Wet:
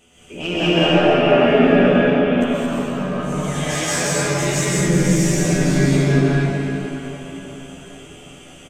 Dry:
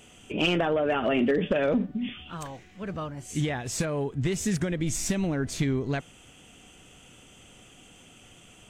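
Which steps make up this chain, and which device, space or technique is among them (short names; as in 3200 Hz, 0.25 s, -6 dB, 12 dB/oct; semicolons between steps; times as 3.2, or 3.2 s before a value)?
cathedral (reverb RT60 4.7 s, pre-delay 0.116 s, DRR -8 dB); 3.54–4.65 tilt shelf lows -5 dB, about 730 Hz; doubler 12 ms -2.5 dB; non-linear reverb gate 0.24 s rising, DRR -4.5 dB; gain -5 dB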